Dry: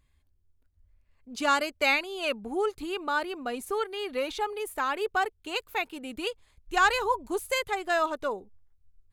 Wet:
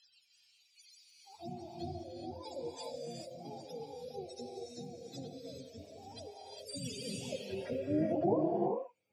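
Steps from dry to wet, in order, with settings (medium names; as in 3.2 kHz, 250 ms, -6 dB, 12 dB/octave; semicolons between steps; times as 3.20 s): spectrum inverted on a logarithmic axis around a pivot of 450 Hz; band-pass sweep 4.4 kHz -> 440 Hz, 6.91–8.77 s; gated-style reverb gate 450 ms rising, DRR -0.5 dB; trim +13.5 dB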